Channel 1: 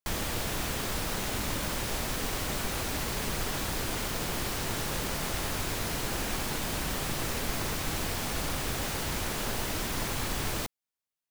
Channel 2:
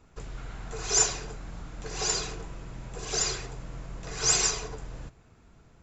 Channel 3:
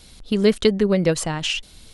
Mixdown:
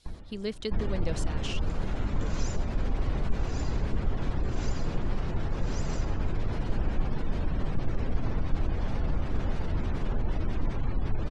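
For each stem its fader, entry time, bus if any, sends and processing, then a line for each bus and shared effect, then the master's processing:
-2.0 dB, 0.00 s, bus A, no send, echo send -3.5 dB, spectral gate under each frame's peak -20 dB strong; tilt -3 dB/oct; auto duck -22 dB, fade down 0.25 s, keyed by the third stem
0.0 dB, 1.50 s, bus A, no send, no echo send, compressor, threshold -34 dBFS, peak gain reduction 15 dB
-17.0 dB, 0.00 s, no bus, no send, no echo send, high shelf 5400 Hz +11.5 dB
bus A: 0.0 dB, compressor 4:1, threshold -32 dBFS, peak gain reduction 15 dB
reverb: off
echo: echo 0.656 s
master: LPF 6100 Hz 12 dB/oct

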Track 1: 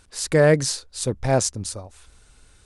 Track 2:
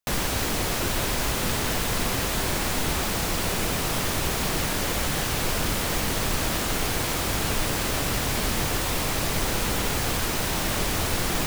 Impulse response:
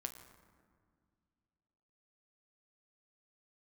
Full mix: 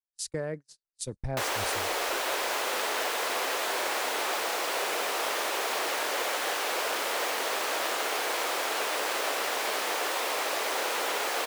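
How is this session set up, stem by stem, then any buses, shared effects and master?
-6.0 dB, 0.00 s, send -21.5 dB, compressor 6:1, threshold -29 dBFS, peak gain reduction 16.5 dB; three-band expander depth 100%
+1.0 dB, 1.30 s, no send, HPF 440 Hz 24 dB/oct; high shelf 4100 Hz -8.5 dB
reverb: on, RT60 2.0 s, pre-delay 7 ms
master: gate -36 dBFS, range -43 dB

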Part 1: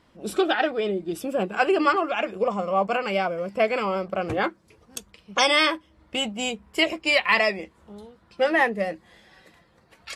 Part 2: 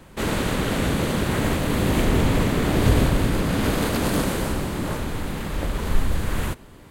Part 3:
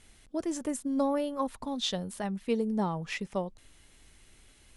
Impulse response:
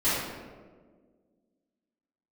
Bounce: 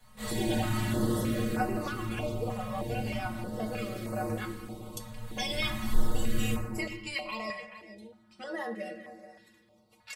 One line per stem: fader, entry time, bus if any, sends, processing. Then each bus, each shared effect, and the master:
+1.0 dB, 0.00 s, send -20.5 dB, echo send -16.5 dB, compressor 2:1, threshold -25 dBFS, peak gain reduction 6 dB
1.2 s -7.5 dB -> 1.86 s -18 dB -> 5.1 s -18 dB -> 5.62 s -6.5 dB, 0.00 s, send -4.5 dB, no echo send, auto duck -9 dB, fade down 0.20 s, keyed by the third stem
-7.0 dB, 0.00 s, no send, echo send -6.5 dB, dry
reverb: on, RT60 1.6 s, pre-delay 3 ms
echo: echo 0.429 s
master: high shelf 6600 Hz +5.5 dB; metallic resonator 110 Hz, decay 0.27 s, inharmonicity 0.008; stepped notch 3.2 Hz 340–3300 Hz

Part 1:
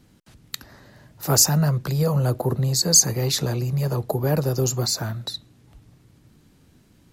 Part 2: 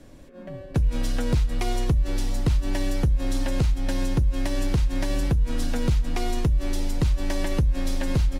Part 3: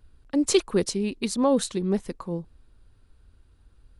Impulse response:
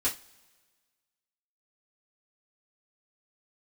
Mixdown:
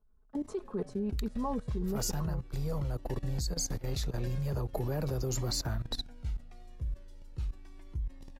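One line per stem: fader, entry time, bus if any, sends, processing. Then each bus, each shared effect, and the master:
-3.0 dB, 0.65 s, no send, auto duck -9 dB, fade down 1.90 s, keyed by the third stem
-10.0 dB, 0.35 s, no send, upward compressor, threshold -26 dBFS; cascading flanger falling 0.39 Hz
-8.5 dB, 0.00 s, send -22.5 dB, resonant high shelf 1700 Hz -14 dB, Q 1.5; comb 4.7 ms, depth 79%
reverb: on, pre-delay 3 ms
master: high shelf 3700 Hz -5 dB; level quantiser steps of 16 dB

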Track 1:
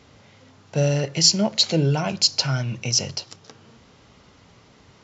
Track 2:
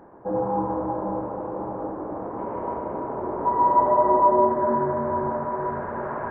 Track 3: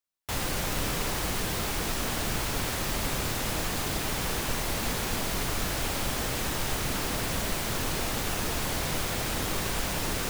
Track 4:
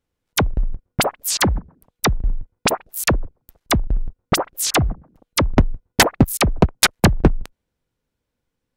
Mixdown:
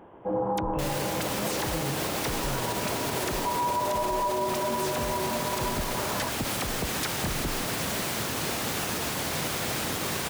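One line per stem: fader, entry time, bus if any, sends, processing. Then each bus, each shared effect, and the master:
-11.0 dB, 0.00 s, no send, steep low-pass 3300 Hz 96 dB/oct
-1.5 dB, 0.00 s, no send, dry
+1.5 dB, 0.50 s, no send, HPF 110 Hz 12 dB/oct
-15.0 dB, 0.20 s, no send, dry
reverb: off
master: limiter -19.5 dBFS, peak gain reduction 11.5 dB

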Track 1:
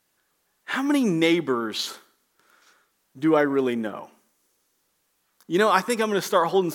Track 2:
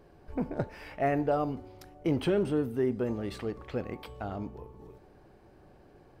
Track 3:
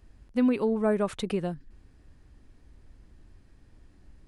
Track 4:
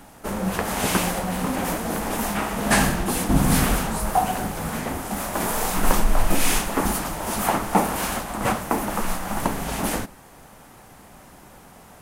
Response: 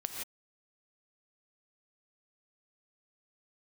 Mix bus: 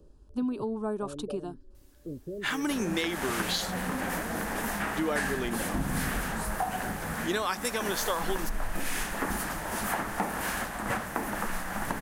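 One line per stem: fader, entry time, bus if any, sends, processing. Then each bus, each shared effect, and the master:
-5.0 dB, 1.75 s, no send, high shelf 2000 Hz +10.5 dB
0.0 dB, 0.00 s, no send, steep low-pass 630 Hz 96 dB/oct; reverb removal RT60 0.5 s; auto duck -11 dB, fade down 0.20 s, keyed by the third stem
-1.5 dB, 0.00 s, no send, fixed phaser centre 550 Hz, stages 6
-6.5 dB, 2.45 s, no send, bell 1700 Hz +9 dB 0.53 oct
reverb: off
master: compressor 4:1, threshold -27 dBFS, peak gain reduction 10.5 dB

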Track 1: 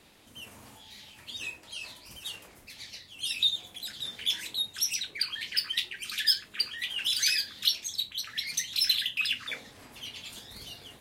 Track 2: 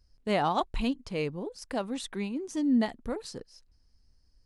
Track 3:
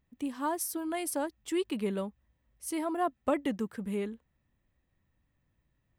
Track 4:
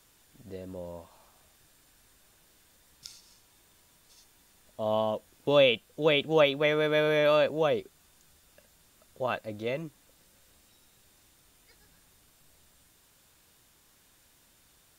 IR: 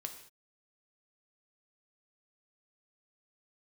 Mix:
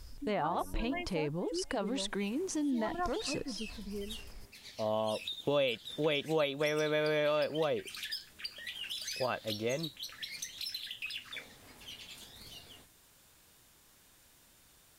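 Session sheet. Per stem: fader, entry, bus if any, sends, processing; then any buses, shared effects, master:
-6.5 dB, 1.85 s, no send, no echo send, compressor, threshold -31 dBFS, peak gain reduction 12 dB
-4.0 dB, 0.00 s, no send, no echo send, treble ducked by the level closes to 2400 Hz, closed at -22.5 dBFS; bell 230 Hz -7 dB 0.26 oct; fast leveller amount 50%
-9.0 dB, 0.00 s, no send, echo send -24 dB, spectral gate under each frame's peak -20 dB strong; bell 1900 Hz +14 dB 2 oct; harmonic-percussive split percussive -18 dB
0.0 dB, 0.00 s, no send, no echo send, auto duck -7 dB, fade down 0.30 s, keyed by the second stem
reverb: off
echo: feedback echo 0.23 s, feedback 59%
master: compressor 3:1, threshold -30 dBFS, peak gain reduction 10 dB

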